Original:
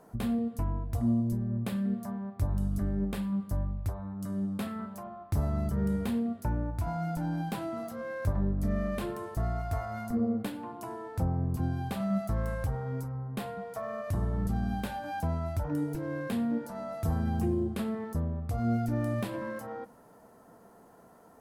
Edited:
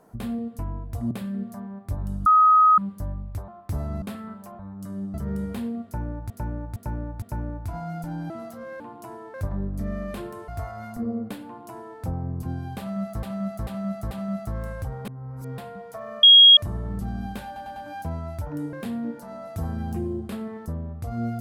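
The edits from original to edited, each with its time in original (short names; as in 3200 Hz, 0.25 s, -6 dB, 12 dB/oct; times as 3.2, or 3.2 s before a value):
1.11–1.62 cut
2.77–3.29 bleep 1260 Hz -12 dBFS
3.99–4.54 swap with 5.11–5.65
6.35–6.81 loop, 4 plays
7.43–7.68 cut
9.32–9.62 cut
10.59–11.13 copy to 8.18
11.93–12.37 loop, 4 plays
12.87–13.4 reverse
14.05 add tone 3280 Hz -7.5 dBFS 0.34 s
14.94 stutter 0.10 s, 4 plays
15.91–16.2 cut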